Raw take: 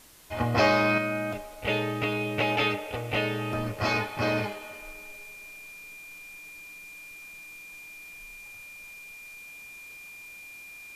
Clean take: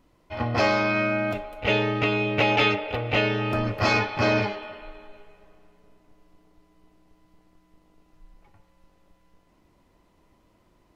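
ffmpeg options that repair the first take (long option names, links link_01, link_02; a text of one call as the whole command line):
ffmpeg -i in.wav -af "bandreject=frequency=2400:width=30,afwtdn=0.0022,asetnsamples=nb_out_samples=441:pad=0,asendcmd='0.98 volume volume 5dB',volume=0dB" out.wav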